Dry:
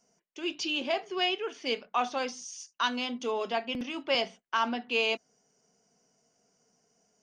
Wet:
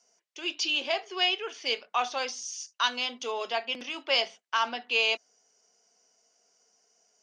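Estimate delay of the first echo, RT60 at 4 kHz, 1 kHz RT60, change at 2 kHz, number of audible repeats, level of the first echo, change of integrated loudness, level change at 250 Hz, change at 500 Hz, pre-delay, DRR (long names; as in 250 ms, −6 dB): no echo audible, no reverb audible, no reverb audible, +3.0 dB, no echo audible, no echo audible, +2.0 dB, −8.5 dB, −2.0 dB, no reverb audible, no reverb audible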